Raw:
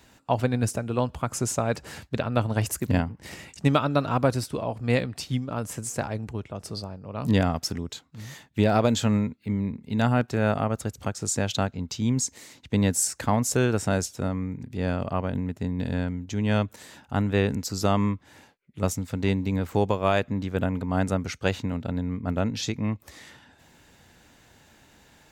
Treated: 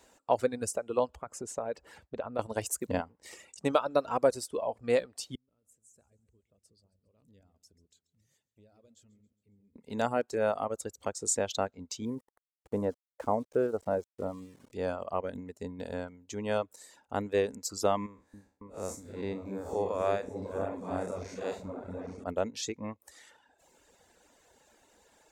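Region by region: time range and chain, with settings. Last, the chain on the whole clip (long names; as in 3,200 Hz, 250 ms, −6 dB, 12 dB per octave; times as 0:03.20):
0:01.16–0:02.39: high-shelf EQ 3,200 Hz −12 dB + downward compressor 3 to 1, threshold −27 dBFS
0:05.35–0:09.76: guitar amp tone stack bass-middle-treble 10-0-1 + downward compressor 2 to 1, threshold −55 dBFS + repeating echo 136 ms, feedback 52%, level −11 dB
0:12.05–0:14.72: low-pass filter 1,100 Hz + centre clipping without the shift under −43.5 dBFS
0:18.06–0:22.24: spectrum smeared in time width 149 ms + parametric band 3,000 Hz −8.5 dB 0.25 octaves + echo whose low-pass opens from repeat to repeat 276 ms, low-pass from 400 Hz, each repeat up 2 octaves, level −6 dB
whole clip: reverb reduction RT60 1.2 s; octave-band graphic EQ 125/500/1,000/8,000 Hz −10/+10/+4/+9 dB; level −9 dB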